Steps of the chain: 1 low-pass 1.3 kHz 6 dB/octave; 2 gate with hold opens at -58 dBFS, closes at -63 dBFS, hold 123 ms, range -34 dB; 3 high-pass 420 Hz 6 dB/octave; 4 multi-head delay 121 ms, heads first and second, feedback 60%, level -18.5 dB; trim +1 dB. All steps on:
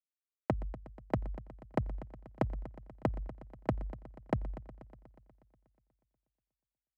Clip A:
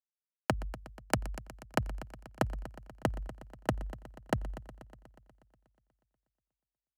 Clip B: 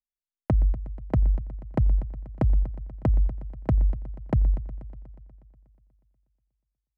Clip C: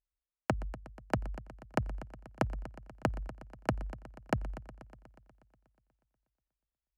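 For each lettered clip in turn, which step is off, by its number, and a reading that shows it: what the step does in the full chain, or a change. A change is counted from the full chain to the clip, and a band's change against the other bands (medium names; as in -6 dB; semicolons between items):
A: 1, 4 kHz band +14.0 dB; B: 3, 125 Hz band +12.0 dB; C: 2, 4 kHz band +9.5 dB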